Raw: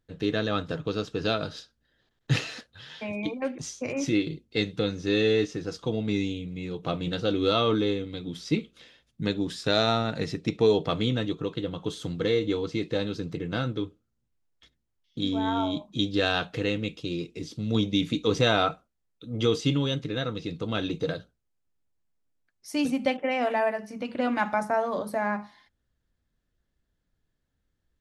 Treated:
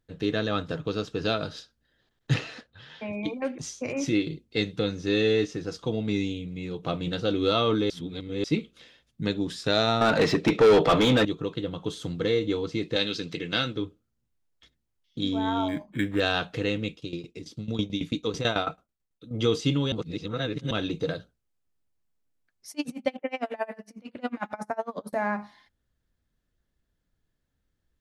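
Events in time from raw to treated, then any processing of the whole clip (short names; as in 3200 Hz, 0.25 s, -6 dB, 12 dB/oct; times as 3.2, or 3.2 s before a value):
2.34–3.25 LPF 2500 Hz 6 dB/oct
7.9–8.44 reverse
10.01–11.25 overdrive pedal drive 27 dB, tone 1600 Hz, clips at -9.5 dBFS
12.96–13.76 weighting filter D
15.68–16.2 decimation joined by straight lines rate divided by 8×
16.91–19.31 tremolo saw down 9.1 Hz, depth 85%
19.92–20.71 reverse
22.71–25.13 dB-linear tremolo 11 Hz, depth 29 dB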